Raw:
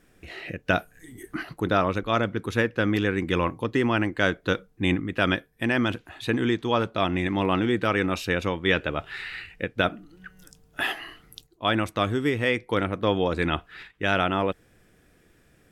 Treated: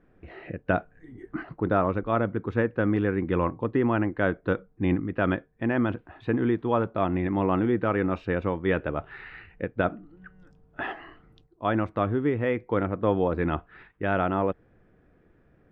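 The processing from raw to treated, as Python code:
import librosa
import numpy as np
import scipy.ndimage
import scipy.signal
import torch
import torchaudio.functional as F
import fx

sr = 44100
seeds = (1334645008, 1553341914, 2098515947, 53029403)

y = scipy.signal.sosfilt(scipy.signal.butter(2, 1300.0, 'lowpass', fs=sr, output='sos'), x)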